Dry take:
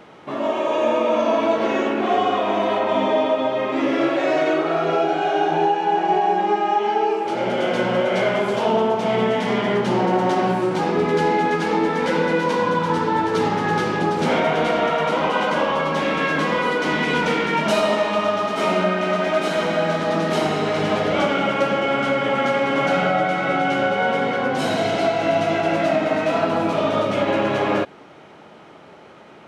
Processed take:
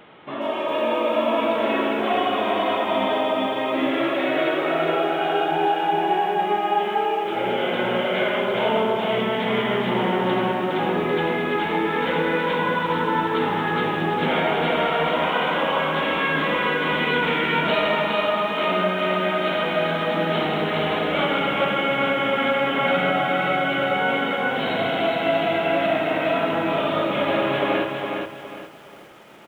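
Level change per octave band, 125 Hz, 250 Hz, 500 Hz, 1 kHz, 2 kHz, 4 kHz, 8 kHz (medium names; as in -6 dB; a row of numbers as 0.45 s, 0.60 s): -3.0 dB, -2.5 dB, -2.5 dB, -2.0 dB, +0.5 dB, +2.0 dB, under -10 dB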